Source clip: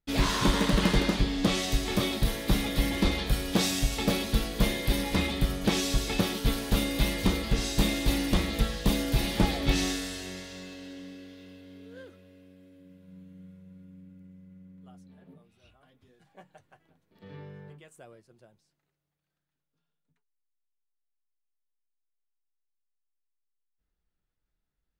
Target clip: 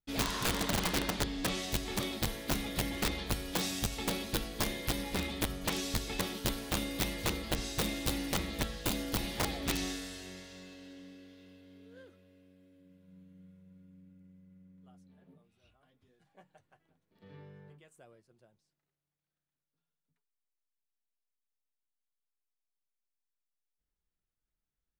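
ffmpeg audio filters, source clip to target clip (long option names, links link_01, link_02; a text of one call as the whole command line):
ffmpeg -i in.wav -af "aeval=exprs='(mod(7.08*val(0)+1,2)-1)/7.08':channel_layout=same,volume=-7.5dB" out.wav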